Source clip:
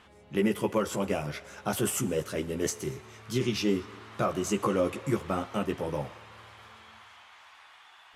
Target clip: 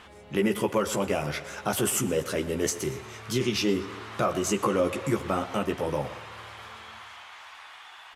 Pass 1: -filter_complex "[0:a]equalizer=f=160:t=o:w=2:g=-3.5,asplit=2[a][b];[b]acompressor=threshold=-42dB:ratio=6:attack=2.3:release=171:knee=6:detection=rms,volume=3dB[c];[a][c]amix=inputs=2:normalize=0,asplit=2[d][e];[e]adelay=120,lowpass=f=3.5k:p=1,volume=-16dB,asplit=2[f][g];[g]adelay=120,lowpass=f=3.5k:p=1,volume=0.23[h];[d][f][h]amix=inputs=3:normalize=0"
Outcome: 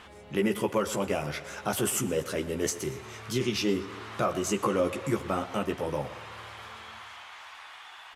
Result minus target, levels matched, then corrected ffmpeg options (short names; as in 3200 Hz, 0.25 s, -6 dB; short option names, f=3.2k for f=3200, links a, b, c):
compressor: peak gain reduction +8 dB
-filter_complex "[0:a]equalizer=f=160:t=o:w=2:g=-3.5,asplit=2[a][b];[b]acompressor=threshold=-32.5dB:ratio=6:attack=2.3:release=171:knee=6:detection=rms,volume=3dB[c];[a][c]amix=inputs=2:normalize=0,asplit=2[d][e];[e]adelay=120,lowpass=f=3.5k:p=1,volume=-16dB,asplit=2[f][g];[g]adelay=120,lowpass=f=3.5k:p=1,volume=0.23[h];[d][f][h]amix=inputs=3:normalize=0"